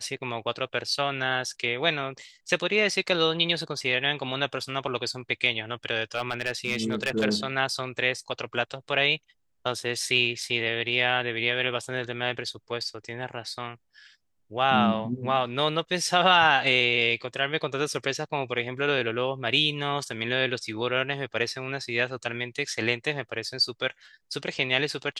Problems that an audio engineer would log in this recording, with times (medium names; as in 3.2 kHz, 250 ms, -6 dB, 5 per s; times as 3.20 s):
6.15–7.25 s: clipped -19.5 dBFS